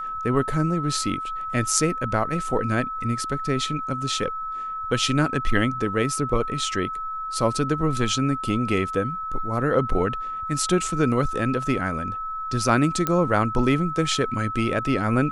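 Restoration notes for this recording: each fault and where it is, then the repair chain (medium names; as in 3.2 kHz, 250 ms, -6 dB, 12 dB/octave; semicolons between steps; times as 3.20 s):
whine 1.3 kHz -28 dBFS
13.07 s: pop -8 dBFS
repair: de-click; band-stop 1.3 kHz, Q 30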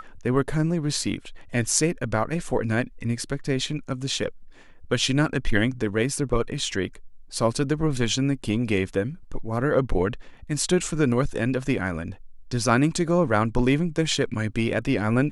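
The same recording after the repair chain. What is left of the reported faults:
nothing left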